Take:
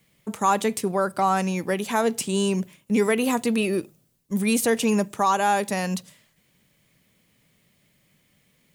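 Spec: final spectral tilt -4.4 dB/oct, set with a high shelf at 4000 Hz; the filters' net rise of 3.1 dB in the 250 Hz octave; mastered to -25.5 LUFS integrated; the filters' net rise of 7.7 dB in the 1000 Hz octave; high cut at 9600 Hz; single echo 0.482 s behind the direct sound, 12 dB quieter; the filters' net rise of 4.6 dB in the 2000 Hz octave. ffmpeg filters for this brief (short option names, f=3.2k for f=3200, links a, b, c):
-af "lowpass=9.6k,equalizer=f=250:t=o:g=3.5,equalizer=f=1k:t=o:g=9,equalizer=f=2k:t=o:g=3.5,highshelf=f=4k:g=-3,aecho=1:1:482:0.251,volume=-6.5dB"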